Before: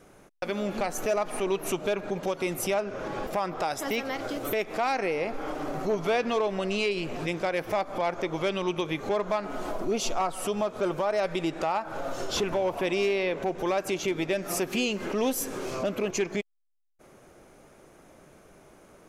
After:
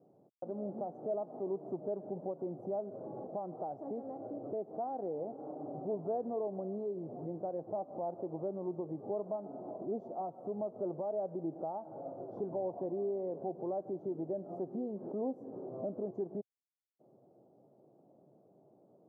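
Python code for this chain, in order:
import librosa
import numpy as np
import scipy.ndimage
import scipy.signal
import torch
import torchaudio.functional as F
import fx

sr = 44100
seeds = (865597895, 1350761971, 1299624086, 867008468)

y = scipy.signal.sosfilt(scipy.signal.ellip(3, 1.0, 50, [120.0, 750.0], 'bandpass', fs=sr, output='sos'), x)
y = y * librosa.db_to_amplitude(-8.5)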